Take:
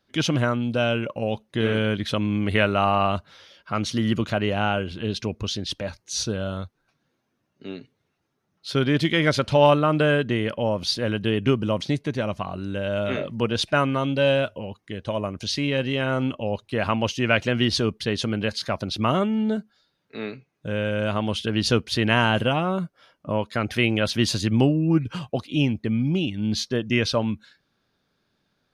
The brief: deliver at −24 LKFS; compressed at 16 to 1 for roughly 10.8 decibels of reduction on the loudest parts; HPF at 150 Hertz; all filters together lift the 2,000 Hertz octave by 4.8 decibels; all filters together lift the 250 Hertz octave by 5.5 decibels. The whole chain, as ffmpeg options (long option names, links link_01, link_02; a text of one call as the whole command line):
ffmpeg -i in.wav -af "highpass=150,equalizer=frequency=250:width_type=o:gain=7.5,equalizer=frequency=2000:width_type=o:gain=6.5,acompressor=threshold=-21dB:ratio=16,volume=3dB" out.wav